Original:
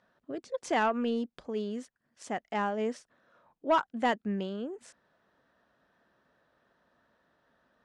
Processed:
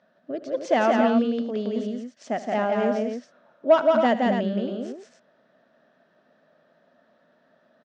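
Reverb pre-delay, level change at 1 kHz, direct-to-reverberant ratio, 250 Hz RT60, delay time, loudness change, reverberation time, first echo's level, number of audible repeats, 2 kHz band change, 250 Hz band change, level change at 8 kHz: no reverb audible, +5.5 dB, no reverb audible, no reverb audible, 77 ms, +8.5 dB, no reverb audible, −16.5 dB, 5, +5.5 dB, +10.0 dB, can't be measured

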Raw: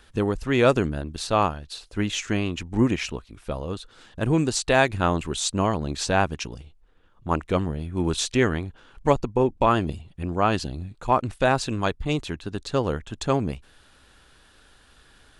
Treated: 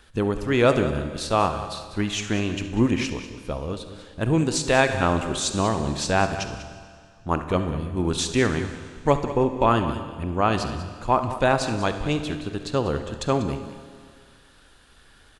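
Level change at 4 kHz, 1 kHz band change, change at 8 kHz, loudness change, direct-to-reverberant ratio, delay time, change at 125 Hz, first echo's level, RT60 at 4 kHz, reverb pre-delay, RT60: +0.5 dB, +0.5 dB, +0.5 dB, +0.5 dB, 7.5 dB, 69 ms, +0.5 dB, −16.0 dB, 2.0 s, 27 ms, 2.0 s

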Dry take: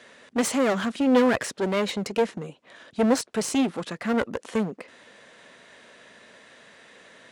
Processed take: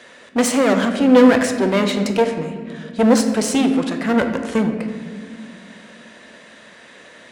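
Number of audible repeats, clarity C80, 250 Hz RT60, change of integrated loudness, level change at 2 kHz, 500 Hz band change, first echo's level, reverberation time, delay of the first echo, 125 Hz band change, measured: no echo audible, 8.5 dB, 3.4 s, +8.0 dB, +7.0 dB, +7.5 dB, no echo audible, 1.9 s, no echo audible, +9.0 dB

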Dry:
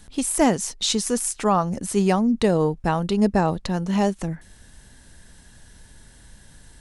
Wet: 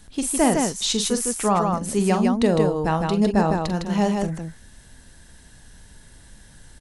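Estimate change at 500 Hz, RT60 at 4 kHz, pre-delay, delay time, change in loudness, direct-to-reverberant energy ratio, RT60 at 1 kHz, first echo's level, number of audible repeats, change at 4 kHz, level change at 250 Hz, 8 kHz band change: +0.5 dB, no reverb audible, no reverb audible, 44 ms, +0.5 dB, no reverb audible, no reverb audible, −10.0 dB, 2, +1.0 dB, +0.5 dB, +1.0 dB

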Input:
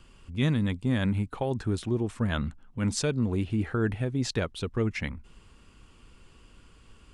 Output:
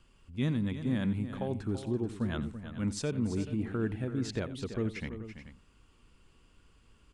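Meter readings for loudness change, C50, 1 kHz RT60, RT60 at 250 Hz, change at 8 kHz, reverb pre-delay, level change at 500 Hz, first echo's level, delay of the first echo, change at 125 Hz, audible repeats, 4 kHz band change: −5.0 dB, no reverb audible, no reverb audible, no reverb audible, −8.0 dB, no reverb audible, −5.0 dB, −16.0 dB, 88 ms, −6.0 dB, 3, −8.0 dB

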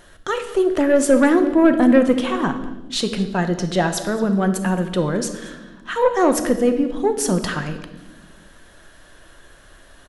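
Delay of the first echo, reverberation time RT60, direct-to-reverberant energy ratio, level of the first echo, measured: 221 ms, 1.1 s, 7.0 dB, −20.0 dB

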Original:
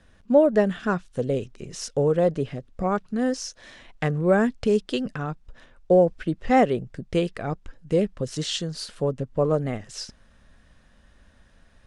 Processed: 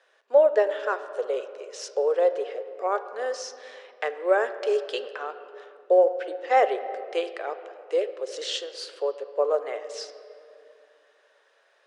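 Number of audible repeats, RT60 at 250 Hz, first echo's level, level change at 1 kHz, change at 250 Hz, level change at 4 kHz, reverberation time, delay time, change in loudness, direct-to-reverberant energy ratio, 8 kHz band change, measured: no echo audible, 3.3 s, no echo audible, +0.5 dB, −17.5 dB, −1.5 dB, 2.6 s, no echo audible, −2.0 dB, 10.0 dB, −4.5 dB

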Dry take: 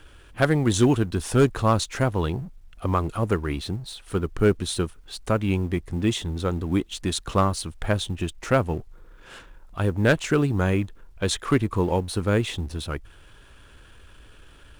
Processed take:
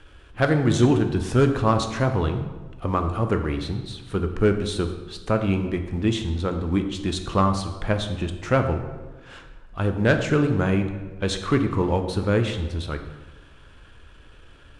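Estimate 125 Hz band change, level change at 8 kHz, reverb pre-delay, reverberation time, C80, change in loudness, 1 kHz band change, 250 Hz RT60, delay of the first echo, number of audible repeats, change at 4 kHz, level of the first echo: +1.0 dB, −5.5 dB, 8 ms, 1.2 s, 10.0 dB, +1.0 dB, +1.0 dB, 1.4 s, no echo audible, no echo audible, −1.0 dB, no echo audible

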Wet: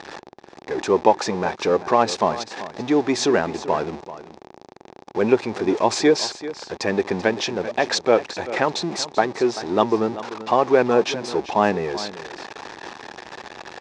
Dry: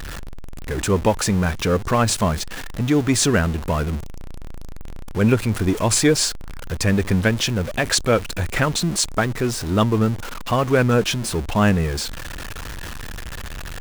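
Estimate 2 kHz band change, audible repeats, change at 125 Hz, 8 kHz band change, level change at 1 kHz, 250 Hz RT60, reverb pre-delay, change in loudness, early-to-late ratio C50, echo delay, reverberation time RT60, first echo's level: −2.5 dB, 1, −14.5 dB, −9.0 dB, +4.0 dB, no reverb audible, no reverb audible, −1.5 dB, no reverb audible, 387 ms, no reverb audible, −14.5 dB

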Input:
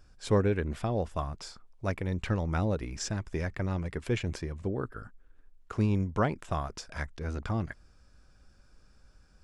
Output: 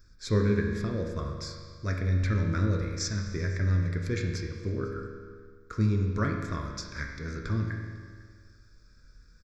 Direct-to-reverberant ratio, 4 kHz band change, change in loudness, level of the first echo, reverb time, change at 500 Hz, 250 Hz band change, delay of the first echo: 1.0 dB, +3.0 dB, +2.0 dB, −23.5 dB, 1.8 s, −1.5 dB, +1.5 dB, 500 ms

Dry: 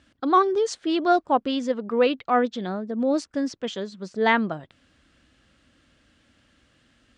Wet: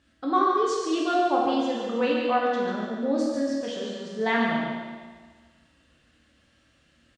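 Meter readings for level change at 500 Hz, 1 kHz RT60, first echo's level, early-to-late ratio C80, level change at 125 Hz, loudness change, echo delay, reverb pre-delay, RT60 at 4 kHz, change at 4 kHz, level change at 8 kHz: −2.0 dB, 1.5 s, −6.0 dB, 0.0 dB, −2.0 dB, −2.0 dB, 143 ms, 6 ms, 1.5 s, −1.5 dB, −1.0 dB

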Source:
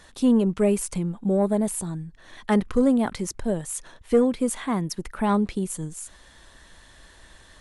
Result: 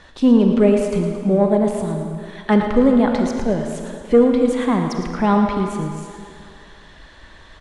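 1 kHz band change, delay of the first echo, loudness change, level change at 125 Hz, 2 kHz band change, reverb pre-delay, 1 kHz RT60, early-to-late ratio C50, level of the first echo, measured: +8.0 dB, 111 ms, +6.5 dB, +6.0 dB, +7.0 dB, 30 ms, 2.5 s, 3.5 dB, −10.0 dB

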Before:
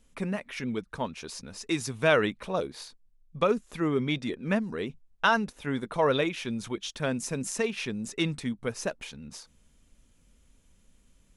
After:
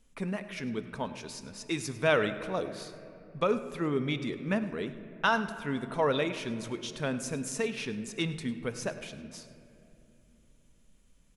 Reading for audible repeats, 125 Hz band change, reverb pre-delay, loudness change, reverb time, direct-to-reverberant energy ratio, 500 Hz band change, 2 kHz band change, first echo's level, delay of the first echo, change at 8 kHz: 1, −2.0 dB, 4 ms, −2.5 dB, 2.8 s, 9.5 dB, −2.5 dB, −2.5 dB, −17.5 dB, 102 ms, −3.0 dB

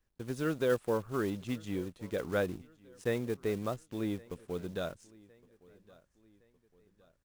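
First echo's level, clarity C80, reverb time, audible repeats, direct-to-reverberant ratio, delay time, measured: −24.0 dB, no reverb audible, no reverb audible, 2, no reverb audible, 1,114 ms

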